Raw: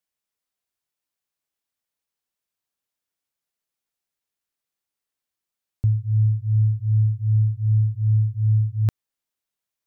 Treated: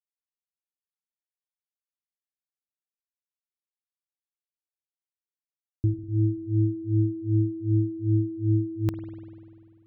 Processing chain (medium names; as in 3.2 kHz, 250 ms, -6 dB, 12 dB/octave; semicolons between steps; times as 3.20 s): de-hum 157.7 Hz, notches 3; power-law waveshaper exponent 3; spring tank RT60 2.2 s, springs 49 ms, chirp 50 ms, DRR 8.5 dB; trim -1 dB